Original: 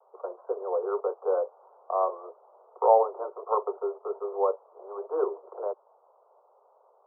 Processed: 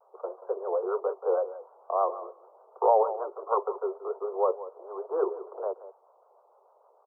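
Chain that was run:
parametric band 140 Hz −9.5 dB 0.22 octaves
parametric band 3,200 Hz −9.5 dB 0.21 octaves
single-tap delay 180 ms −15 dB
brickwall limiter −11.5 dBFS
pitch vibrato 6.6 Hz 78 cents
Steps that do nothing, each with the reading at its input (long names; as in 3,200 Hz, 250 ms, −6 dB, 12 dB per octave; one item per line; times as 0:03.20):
parametric band 140 Hz: nothing at its input below 320 Hz
parametric band 3,200 Hz: nothing at its input above 1,400 Hz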